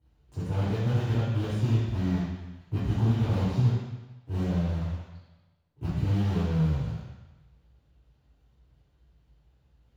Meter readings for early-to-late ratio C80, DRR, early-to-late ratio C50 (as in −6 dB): 0.5 dB, −11.0 dB, −2.0 dB